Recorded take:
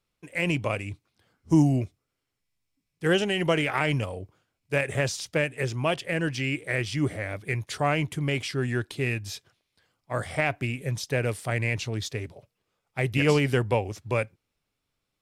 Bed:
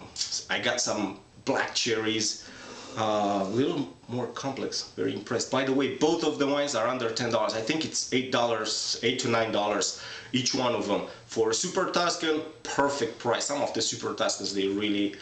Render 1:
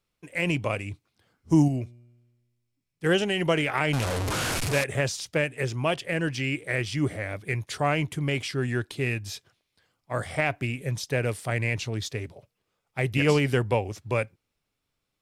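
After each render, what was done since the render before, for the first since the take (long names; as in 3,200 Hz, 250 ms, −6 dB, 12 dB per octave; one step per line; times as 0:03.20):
0:01.68–0:03.04: tuned comb filter 120 Hz, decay 1.4 s, mix 40%
0:03.93–0:04.84: linear delta modulator 64 kbit/s, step −21.5 dBFS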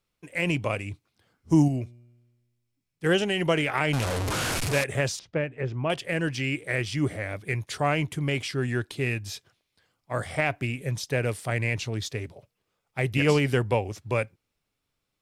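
0:05.19–0:05.90: head-to-tape spacing loss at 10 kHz 32 dB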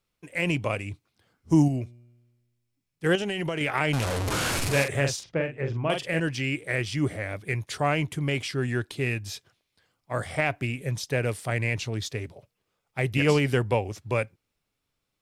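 0:03.15–0:03.61: downward compressor, threshold −25 dBFS
0:04.23–0:06.20: double-tracking delay 43 ms −6 dB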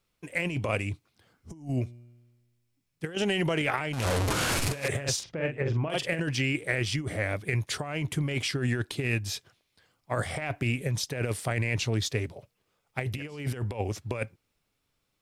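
compressor whose output falls as the input rises −28 dBFS, ratio −0.5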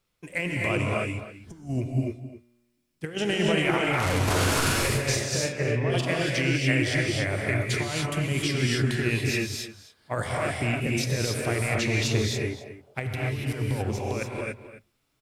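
slap from a distant wall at 45 metres, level −13 dB
reverb whose tail is shaped and stops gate 310 ms rising, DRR −2 dB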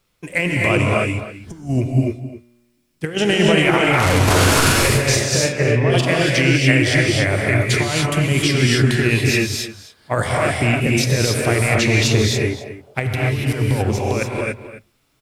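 level +9.5 dB
brickwall limiter −3 dBFS, peak gain reduction 2 dB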